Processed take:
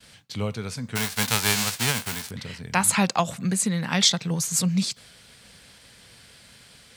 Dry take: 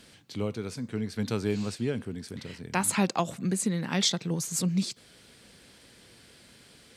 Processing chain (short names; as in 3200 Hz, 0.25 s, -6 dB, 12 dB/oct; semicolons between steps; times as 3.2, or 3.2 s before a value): 0.95–2.29 spectral whitening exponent 0.3; expander -52 dBFS; bell 330 Hz -10.5 dB 1.1 oct; gain +7 dB